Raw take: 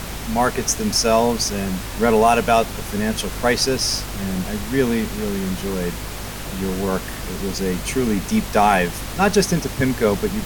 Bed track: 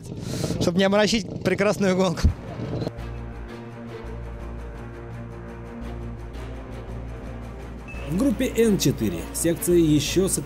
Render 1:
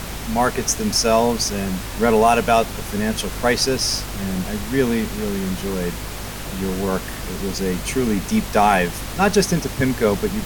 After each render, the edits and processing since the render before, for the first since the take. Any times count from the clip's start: no audible change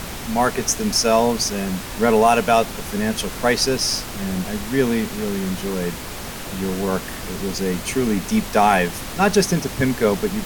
de-hum 50 Hz, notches 3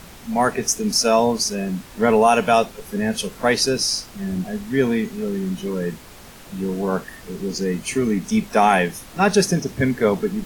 noise print and reduce 11 dB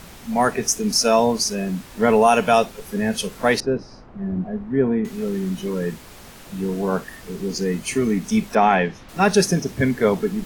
3.60–5.05 s: low-pass 1.1 kHz; 8.55–9.09 s: distance through air 180 m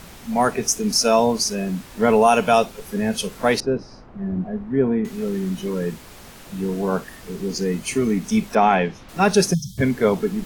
9.54–9.78 s: spectral selection erased 210–3100 Hz; dynamic bell 1.8 kHz, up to -5 dB, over -43 dBFS, Q 6.3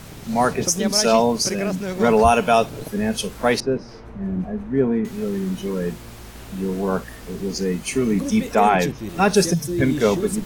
add bed track -7 dB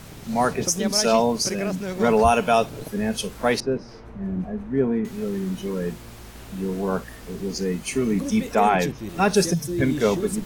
trim -2.5 dB

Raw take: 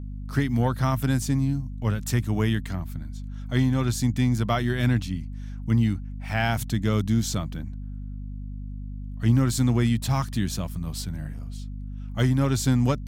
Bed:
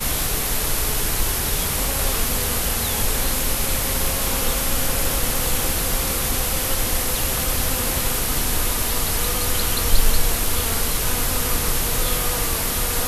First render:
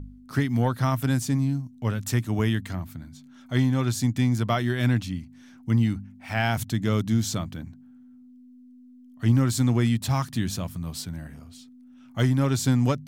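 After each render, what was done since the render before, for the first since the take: de-hum 50 Hz, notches 4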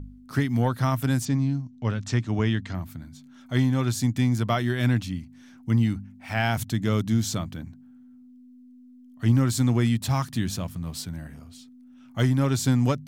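1.25–2.75 s: low-pass 6.4 kHz 24 dB/octave; 10.45–10.98 s: hysteresis with a dead band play -51.5 dBFS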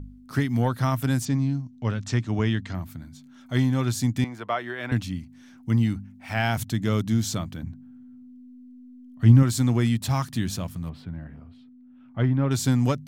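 4.24–4.92 s: three-band isolator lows -20 dB, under 370 Hz, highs -16 dB, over 2.9 kHz; 7.63–9.43 s: tone controls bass +7 dB, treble -5 dB; 10.89–12.51 s: distance through air 450 m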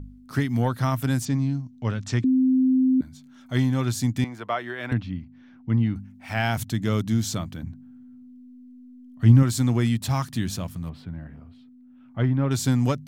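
2.24–3.01 s: bleep 259 Hz -16 dBFS; 4.93–5.96 s: distance through air 300 m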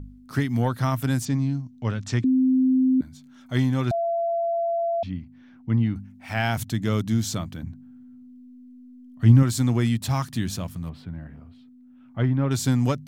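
3.91–5.03 s: bleep 677 Hz -21.5 dBFS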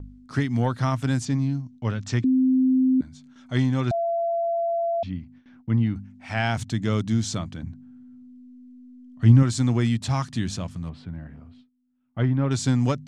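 gate with hold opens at -43 dBFS; low-pass 8.3 kHz 24 dB/octave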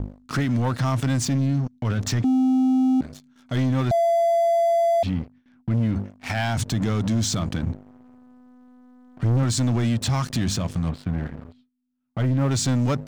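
waveshaping leveller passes 3; peak limiter -16.5 dBFS, peak gain reduction 11.5 dB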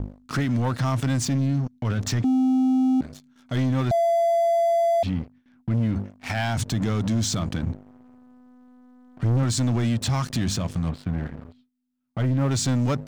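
trim -1 dB

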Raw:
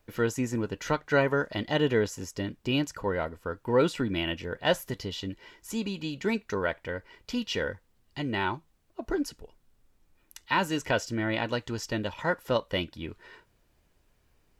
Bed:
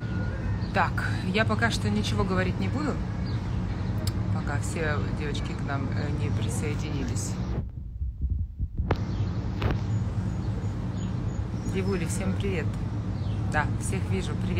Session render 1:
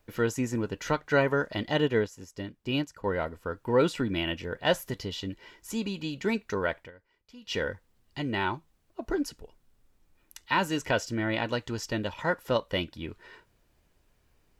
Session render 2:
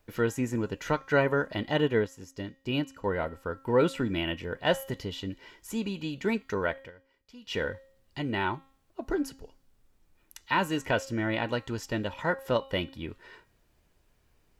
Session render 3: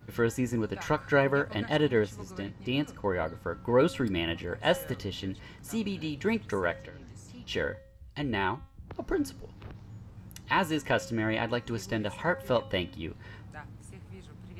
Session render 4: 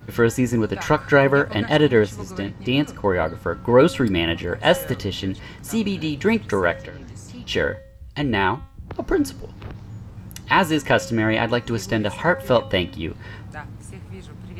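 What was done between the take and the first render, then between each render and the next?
1.81–3.04 s: upward expansion, over -41 dBFS; 6.79–7.54 s: dip -18.5 dB, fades 0.12 s
de-hum 269.2 Hz, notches 28; dynamic bell 5.2 kHz, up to -6 dB, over -51 dBFS, Q 1.4
add bed -19 dB
trim +9.5 dB; peak limiter -3 dBFS, peak gain reduction 2 dB

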